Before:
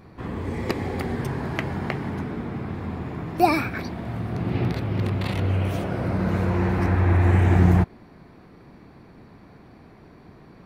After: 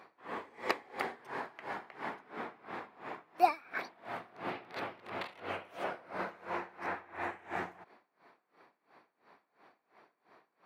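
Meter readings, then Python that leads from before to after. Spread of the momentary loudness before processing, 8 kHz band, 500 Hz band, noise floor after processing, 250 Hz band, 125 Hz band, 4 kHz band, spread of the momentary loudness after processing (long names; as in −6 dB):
13 LU, can't be measured, −12.0 dB, −81 dBFS, −22.5 dB, −37.0 dB, −9.5 dB, 9 LU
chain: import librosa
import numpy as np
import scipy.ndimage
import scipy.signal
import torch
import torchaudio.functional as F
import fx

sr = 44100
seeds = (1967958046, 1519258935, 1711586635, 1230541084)

y = scipy.signal.sosfilt(scipy.signal.butter(2, 720.0, 'highpass', fs=sr, output='sos'), x)
y = fx.high_shelf(y, sr, hz=3900.0, db=-11.0)
y = fx.rider(y, sr, range_db=4, speed_s=0.5)
y = y * 10.0 ** (-23 * (0.5 - 0.5 * np.cos(2.0 * np.pi * 2.9 * np.arange(len(y)) / sr)) / 20.0)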